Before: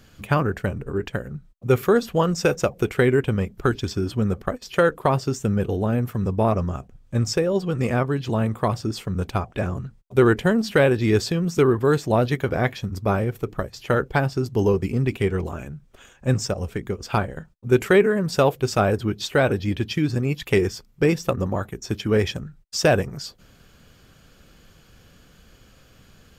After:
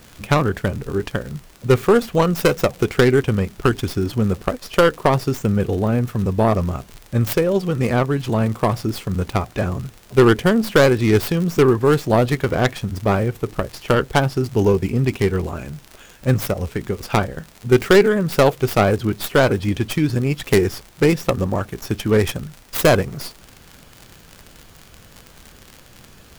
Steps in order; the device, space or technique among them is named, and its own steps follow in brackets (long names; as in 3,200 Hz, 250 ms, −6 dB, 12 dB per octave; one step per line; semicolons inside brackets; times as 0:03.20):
record under a worn stylus (stylus tracing distortion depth 0.32 ms; surface crackle 76 per second −30 dBFS; pink noise bed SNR 31 dB)
level +3.5 dB